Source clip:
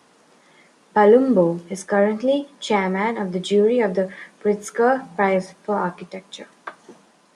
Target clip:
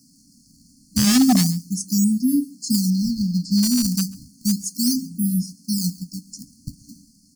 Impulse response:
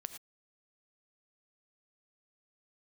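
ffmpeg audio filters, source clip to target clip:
-filter_complex "[0:a]acrossover=split=1600[link_01][link_02];[link_01]acrusher=samples=19:mix=1:aa=0.000001:lfo=1:lforange=30.4:lforate=0.33[link_03];[link_03][link_02]amix=inputs=2:normalize=0,asettb=1/sr,asplit=3[link_04][link_05][link_06];[link_04]atrim=end=2.904[link_07];[link_05]atrim=start=2.9:end=3.63,asetpts=PTS-STARTPTS,afade=type=in:duration=0.004:curve=qsin,afade=type=out:start_time=0.726:duration=0.004:curve=qsin,highshelf=frequency=5600:width_type=q:width=1.5:gain=-12[link_08];[link_06]atrim=start=3.626[link_09];[link_07][link_08]acrossfade=duration=0.004:curve1=hsin:curve2=qsin[link_10];[link_10][link_09]acrossfade=duration=0.004:curve1=qsin:curve2=hsin,afftfilt=real='re*(1-between(b*sr/4096,300,4200))':imag='im*(1-between(b*sr/4096,300,4200))':win_size=4096:overlap=0.75,aeval=exprs='0.168*(abs(mod(val(0)/0.168+3,4)-2)-1)':channel_layout=same,aecho=1:1:137:0.0708,volume=6dB"

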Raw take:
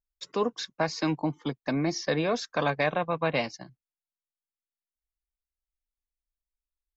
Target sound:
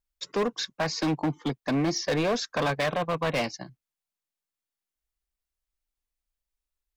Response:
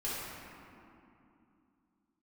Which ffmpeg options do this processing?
-af "volume=26dB,asoftclip=hard,volume=-26dB,volume=4dB"

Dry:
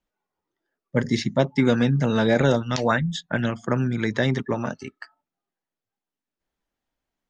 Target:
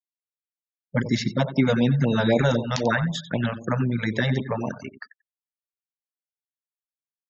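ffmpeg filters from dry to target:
ffmpeg -i in.wav -af "aecho=1:1:91|182|273|364:0.224|0.0851|0.0323|0.0123,afftfilt=real='re*gte(hypot(re,im),0.0112)':imag='im*gte(hypot(re,im),0.0112)':win_size=1024:overlap=0.75,afftfilt=real='re*(1-between(b*sr/1024,280*pow(1600/280,0.5+0.5*sin(2*PI*3.9*pts/sr))/1.41,280*pow(1600/280,0.5+0.5*sin(2*PI*3.9*pts/sr))*1.41))':imag='im*(1-between(b*sr/1024,280*pow(1600/280,0.5+0.5*sin(2*PI*3.9*pts/sr))/1.41,280*pow(1600/280,0.5+0.5*sin(2*PI*3.9*pts/sr))*1.41))':win_size=1024:overlap=0.75" out.wav

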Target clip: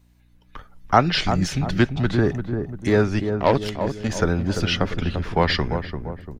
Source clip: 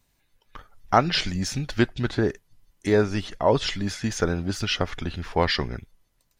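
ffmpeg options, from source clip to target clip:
ffmpeg -i in.wav -filter_complex "[0:a]bass=frequency=250:gain=2,treble=frequency=4000:gain=-4,acrossover=split=350|420|2600[link_01][link_02][link_03][link_04];[link_02]asoftclip=type=hard:threshold=-35.5dB[link_05];[link_01][link_05][link_03][link_04]amix=inputs=4:normalize=0,aeval=exprs='val(0)+0.00112*(sin(2*PI*60*n/s)+sin(2*PI*2*60*n/s)/2+sin(2*PI*3*60*n/s)/3+sin(2*PI*4*60*n/s)/4+sin(2*PI*5*60*n/s)/5)':channel_layout=same,asettb=1/sr,asplit=3[link_06][link_07][link_08];[link_06]atrim=end=3.194[link_09];[link_07]atrim=start=3.19:end=4.09,asetpts=PTS-STARTPTS,afade=type=in:duration=0.004:curve=qsin,afade=type=out:start_time=0.896:duration=0.004:curve=qsin,aeval=exprs='0.422*(cos(1*acos(clip(val(0)/0.422,-1,1)))-cos(1*PI/2))+0.0473*(cos(7*acos(clip(val(0)/0.422,-1,1)))-cos(7*PI/2))':channel_layout=same[link_10];[link_08]atrim=start=4.086[link_11];[link_09][link_10]acrossfade=duration=0.004:curve1=hsin:curve2=qsin[link_12];[link_12][link_11]acrossfade=duration=0.004:curve1=qsin:curve2=hsin,asplit=2[link_13][link_14];[link_14]adelay=344,lowpass=frequency=870:poles=1,volume=-6dB,asplit=2[link_15][link_16];[link_16]adelay=344,lowpass=frequency=870:poles=1,volume=0.53,asplit=2[link_17][link_18];[link_18]adelay=344,lowpass=frequency=870:poles=1,volume=0.53,asplit=2[link_19][link_20];[link_20]adelay=344,lowpass=frequency=870:poles=1,volume=0.53,asplit=2[link_21][link_22];[link_22]adelay=344,lowpass=frequency=870:poles=1,volume=0.53,asplit=2[link_23][link_24];[link_24]adelay=344,lowpass=frequency=870:poles=1,volume=0.53,asplit=2[link_25][link_26];[link_26]adelay=344,lowpass=frequency=870:poles=1,volume=0.53[link_27];[link_13][link_15][link_17][link_19][link_21][link_23][link_25][link_27]amix=inputs=8:normalize=0,volume=3dB" out.wav

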